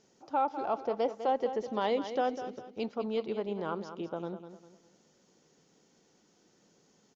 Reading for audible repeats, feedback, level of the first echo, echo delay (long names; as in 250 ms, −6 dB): 3, 34%, −10.5 dB, 201 ms